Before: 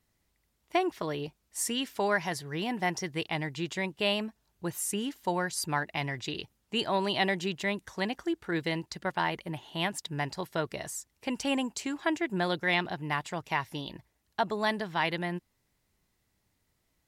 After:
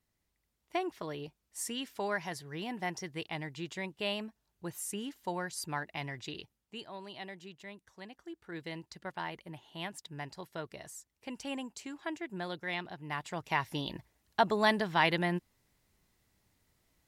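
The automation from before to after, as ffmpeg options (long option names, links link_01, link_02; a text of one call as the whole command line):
ffmpeg -i in.wav -af "volume=12.5dB,afade=type=out:start_time=6.32:duration=0.54:silence=0.298538,afade=type=in:start_time=8.15:duration=0.68:silence=0.421697,afade=type=in:start_time=13:duration=0.92:silence=0.266073" out.wav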